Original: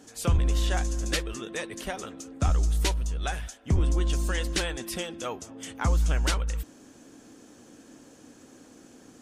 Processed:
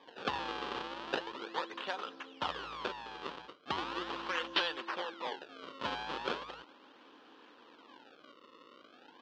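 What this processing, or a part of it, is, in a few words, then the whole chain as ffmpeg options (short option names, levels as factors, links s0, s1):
circuit-bent sampling toy: -filter_complex "[0:a]acrusher=samples=31:mix=1:aa=0.000001:lfo=1:lforange=49.6:lforate=0.38,highpass=550,equalizer=f=660:t=q:w=4:g=-8,equalizer=f=1000:t=q:w=4:g=4,equalizer=f=2100:t=q:w=4:g=-8,equalizer=f=3100:t=q:w=4:g=4,lowpass=f=4200:w=0.5412,lowpass=f=4200:w=1.3066,asettb=1/sr,asplit=3[s0][s1][s2];[s0]atrim=end=4.814[s3];[s1]atrim=start=4.81:end=5.37,asetpts=PTS-STARTPTS,afade=t=in:d=0.004:c=qsin,afade=t=out:st=0.556:d=0.004:c=qsin,bass=f=250:g=-6,treble=f=4000:g=-3[s4];[s2]atrim=start=5.366[s5];[s3][s4]acrossfade=d=0.004:c1=hsin:c2=qsin[s6];[s6][s5]acrossfade=d=0.004:c1=qsin:c2=hsin"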